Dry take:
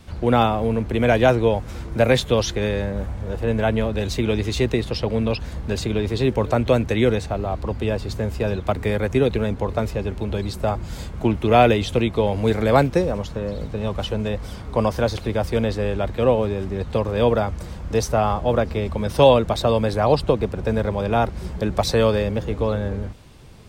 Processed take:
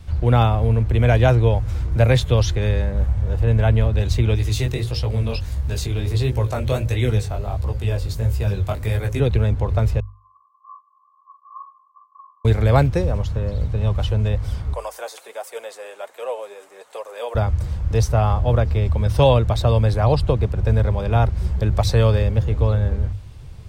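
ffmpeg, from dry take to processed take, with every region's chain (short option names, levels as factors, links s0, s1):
-filter_complex "[0:a]asettb=1/sr,asplit=3[s0][s1][s2];[s0]atrim=end=4.354[s3];[s1]atrim=start=4.35:end=9.2,asetpts=PTS-STARTPTS,afade=t=in:d=0.004:c=qsin,afade=t=out:st=4.846:d=0.004:c=qsin,aemphasis=mode=production:type=50kf,bandreject=f=60:t=h:w=6,bandreject=f=120:t=h:w=6,bandreject=f=180:t=h:w=6,bandreject=f=240:t=h:w=6,bandreject=f=300:t=h:w=6,bandreject=f=360:t=h:w=6,bandreject=f=420:t=h:w=6,bandreject=f=480:t=h:w=6,bandreject=f=540:t=h:w=6,bandreject=f=600:t=h:w=6,flanger=delay=16:depth=6.5:speed=1.5[s4];[s2]atrim=start=9.196[s5];[s3][s4]acrossfade=d=0.004:c1=hsin:c2=qsin[s6];[s6][s5]acrossfade=d=0.004:c1=qsin:c2=hsin,asettb=1/sr,asplit=3[s7][s8][s9];[s7]atrim=end=10.004[s10];[s8]atrim=start=10:end=12.45,asetpts=PTS-STARTPTS,afade=t=in:d=0.004:c=qsin,afade=t=out:st=2.446:d=0.004:c=qsin,asuperpass=centerf=1100:order=12:qfactor=7.7,asplit=2[s11][s12];[s12]adelay=45,volume=0.562[s13];[s11][s13]amix=inputs=2:normalize=0,atrim=end_sample=108045[s14];[s9]atrim=start=12.446[s15];[s10][s14]acrossfade=d=0.004:c1=hsin:c2=qsin[s16];[s16][s15]acrossfade=d=0.004:c1=qsin:c2=hsin,asettb=1/sr,asplit=3[s17][s18][s19];[s17]atrim=end=14.744[s20];[s18]atrim=start=14.74:end=17.35,asetpts=PTS-STARTPTS,afade=t=in:d=0.004:c=qsin,afade=t=out:st=2.606:d=0.004:c=qsin,highpass=f=510:w=0.5412,highpass=f=510:w=1.3066,highshelf=f=6200:t=q:w=1.5:g=9,flanger=delay=1.3:depth=5.9:regen=50:speed=1.3:shape=triangular[s21];[s19]atrim=start=17.346[s22];[s20][s21]acrossfade=d=0.004:c1=hsin:c2=qsin[s23];[s23][s22]acrossfade=d=0.004:c1=qsin:c2=hsin,lowshelf=f=150:t=q:w=1.5:g=11,bandreject=f=50:t=h:w=6,bandreject=f=100:t=h:w=6,volume=0.794"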